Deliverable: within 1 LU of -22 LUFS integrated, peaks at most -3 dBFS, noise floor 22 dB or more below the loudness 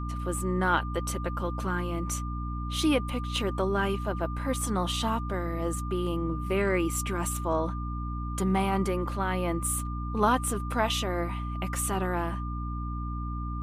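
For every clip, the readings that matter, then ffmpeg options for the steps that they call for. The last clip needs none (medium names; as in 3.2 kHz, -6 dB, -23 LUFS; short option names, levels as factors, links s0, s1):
hum 60 Hz; highest harmonic 300 Hz; hum level -31 dBFS; steady tone 1.2 kHz; tone level -39 dBFS; loudness -29.5 LUFS; peak level -11.5 dBFS; loudness target -22.0 LUFS
-> -af "bandreject=f=60:t=h:w=6,bandreject=f=120:t=h:w=6,bandreject=f=180:t=h:w=6,bandreject=f=240:t=h:w=6,bandreject=f=300:t=h:w=6"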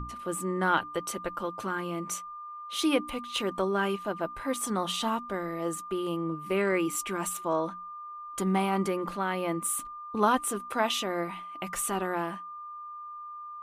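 hum not found; steady tone 1.2 kHz; tone level -39 dBFS
-> -af "bandreject=f=1200:w=30"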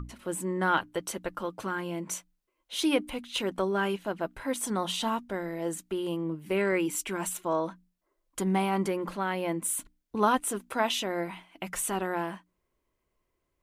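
steady tone not found; loudness -31.0 LUFS; peak level -11.0 dBFS; loudness target -22.0 LUFS
-> -af "volume=2.82,alimiter=limit=0.708:level=0:latency=1"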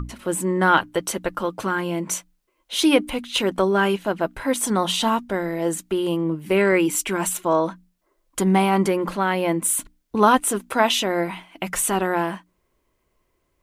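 loudness -22.0 LUFS; peak level -3.0 dBFS; noise floor -71 dBFS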